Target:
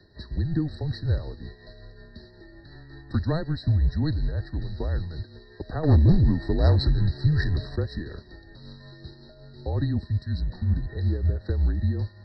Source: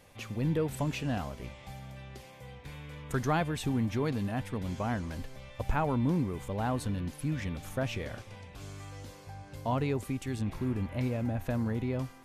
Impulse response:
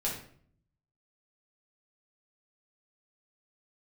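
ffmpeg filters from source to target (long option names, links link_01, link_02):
-filter_complex "[0:a]equalizer=frequency=210:width_type=o:width=0.84:gain=11,acrossover=split=340|1200[link_01][link_02][link_03];[link_01]acontrast=64[link_04];[link_04][link_02][link_03]amix=inputs=3:normalize=0,highpass=frequency=260:width_type=q:width=0.5412,highpass=frequency=260:width_type=q:width=1.307,lowpass=frequency=3400:width_type=q:width=0.5176,lowpass=frequency=3400:width_type=q:width=0.7071,lowpass=frequency=3400:width_type=q:width=1.932,afreqshift=-160,asettb=1/sr,asplit=3[link_05][link_06][link_07];[link_05]atrim=end=5.834[link_08];[link_06]atrim=start=5.83:end=7.76,asetpts=PTS-STARTPTS,afade=type=in:duration=0.004:curve=qsin,afade=type=out:start_time=1.926:duration=0.004:curve=qsin,aeval=exprs='0.178*sin(PI/2*1.78*val(0)/0.178)':channel_layout=same[link_09];[link_07]atrim=start=7.756[link_10];[link_08][link_09]acrossfade=duration=0.004:curve1=hsin:curve2=qsin[link_11];[link_11][link_10]acrossfade=duration=0.004:curve1=qsin:curve2=hsin,equalizer=frequency=1000:width_type=o:width=1.4:gain=-9,aexciter=amount=8.9:drive=6.1:freq=2200,tremolo=f=5.4:d=0.42,afftfilt=real='re*eq(mod(floor(b*sr/1024/1900),2),0)':imag='im*eq(mod(floor(b*sr/1024/1900),2),0)':win_size=1024:overlap=0.75,volume=4dB"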